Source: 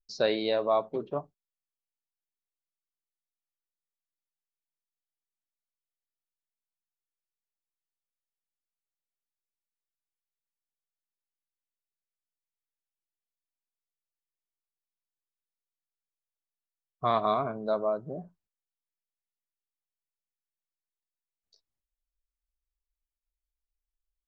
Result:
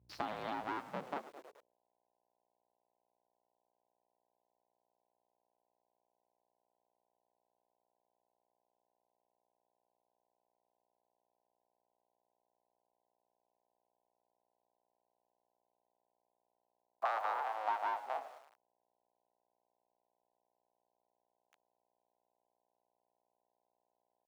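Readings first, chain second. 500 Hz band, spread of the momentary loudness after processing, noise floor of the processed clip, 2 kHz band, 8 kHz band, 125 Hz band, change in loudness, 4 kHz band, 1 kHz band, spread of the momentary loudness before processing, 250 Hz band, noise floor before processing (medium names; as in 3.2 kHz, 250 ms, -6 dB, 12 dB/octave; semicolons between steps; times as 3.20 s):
-16.5 dB, 10 LU, -85 dBFS, -2.5 dB, no reading, under -15 dB, -10.0 dB, -14.5 dB, -4.5 dB, 11 LU, under -10 dB, under -85 dBFS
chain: cycle switcher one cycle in 2, inverted; low-pass 2.6 kHz 12 dB/octave; peaking EQ 950 Hz +4 dB 1.3 oct; frequency-shifting echo 105 ms, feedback 52%, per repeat -73 Hz, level -18 dB; compression 5:1, threshold -38 dBFS, peak gain reduction 17 dB; small samples zeroed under -58.5 dBFS; bass shelf 220 Hz -11 dB; mains buzz 60 Hz, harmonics 17, -70 dBFS -8 dB/octave; high-pass sweep 93 Hz -> 740 Hz, 0.70–1.80 s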